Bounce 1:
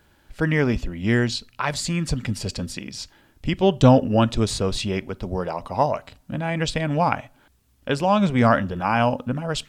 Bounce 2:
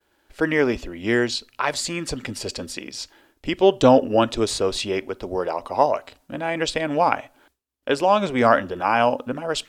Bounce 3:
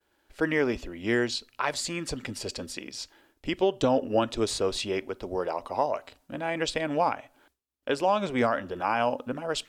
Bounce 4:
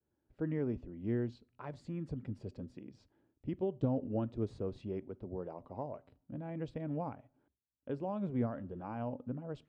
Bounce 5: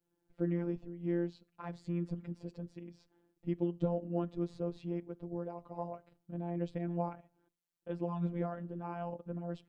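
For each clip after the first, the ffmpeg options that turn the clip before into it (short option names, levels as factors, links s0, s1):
-af "lowshelf=f=240:t=q:w=1.5:g=-10,agate=range=0.0224:threshold=0.002:ratio=3:detection=peak,volume=1.19"
-af "alimiter=limit=0.376:level=0:latency=1:release=225,volume=0.562"
-af "bandpass=f=130:t=q:w=1.4:csg=0,volume=1.12"
-af "afftfilt=real='hypot(re,im)*cos(PI*b)':imag='0':win_size=1024:overlap=0.75,volume=1.78"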